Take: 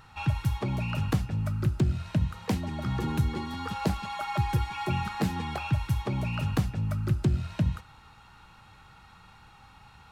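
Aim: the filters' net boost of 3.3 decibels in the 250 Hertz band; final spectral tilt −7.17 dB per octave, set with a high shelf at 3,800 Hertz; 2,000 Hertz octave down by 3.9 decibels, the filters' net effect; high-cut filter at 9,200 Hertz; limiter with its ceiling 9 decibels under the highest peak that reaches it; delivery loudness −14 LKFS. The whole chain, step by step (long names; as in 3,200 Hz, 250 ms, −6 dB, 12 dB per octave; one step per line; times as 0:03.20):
low-pass filter 9,200 Hz
parametric band 250 Hz +5 dB
parametric band 2,000 Hz −4 dB
high-shelf EQ 3,800 Hz −4.5 dB
level +17.5 dB
brickwall limiter −3.5 dBFS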